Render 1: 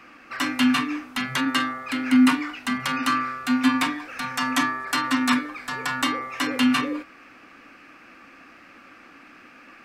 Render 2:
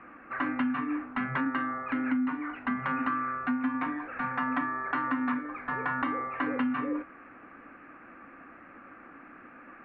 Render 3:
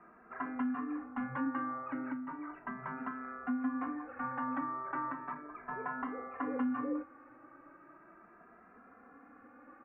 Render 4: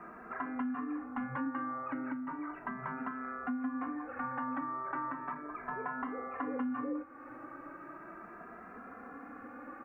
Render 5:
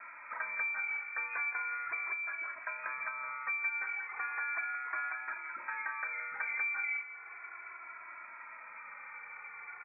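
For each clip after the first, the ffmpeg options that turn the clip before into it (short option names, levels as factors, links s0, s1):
-af "lowpass=f=1800:w=0.5412,lowpass=f=1800:w=1.3066,acompressor=threshold=0.0501:ratio=12"
-filter_complex "[0:a]lowpass=1100,lowshelf=f=320:g=-6.5,asplit=2[s0][s1];[s1]adelay=2.6,afreqshift=0.36[s2];[s0][s2]amix=inputs=2:normalize=1"
-af "acompressor=threshold=0.00224:ratio=2,volume=3.16"
-af "aecho=1:1:169:0.224,lowpass=f=2200:t=q:w=0.5098,lowpass=f=2200:t=q:w=0.6013,lowpass=f=2200:t=q:w=0.9,lowpass=f=2200:t=q:w=2.563,afreqshift=-2600"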